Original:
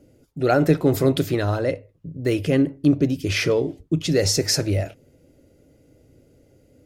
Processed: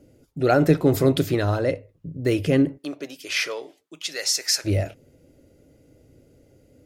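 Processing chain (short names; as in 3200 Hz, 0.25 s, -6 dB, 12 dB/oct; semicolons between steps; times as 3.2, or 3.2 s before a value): 2.77–4.64 HPF 660 Hz -> 1400 Hz 12 dB/oct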